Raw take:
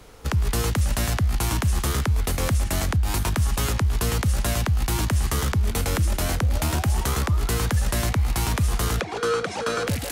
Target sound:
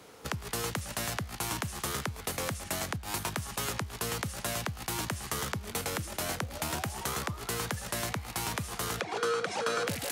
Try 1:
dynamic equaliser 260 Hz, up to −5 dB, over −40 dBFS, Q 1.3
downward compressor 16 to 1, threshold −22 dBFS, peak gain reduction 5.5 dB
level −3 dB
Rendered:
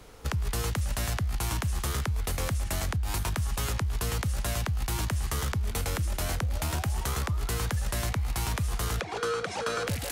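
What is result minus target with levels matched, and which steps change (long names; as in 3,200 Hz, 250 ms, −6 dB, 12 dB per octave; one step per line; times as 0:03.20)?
125 Hz band +6.0 dB
add after downward compressor: high-pass filter 160 Hz 12 dB per octave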